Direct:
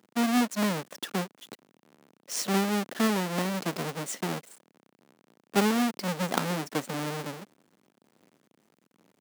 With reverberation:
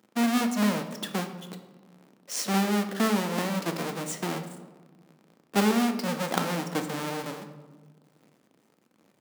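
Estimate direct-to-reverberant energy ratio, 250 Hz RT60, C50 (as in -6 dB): 5.5 dB, 1.8 s, 9.5 dB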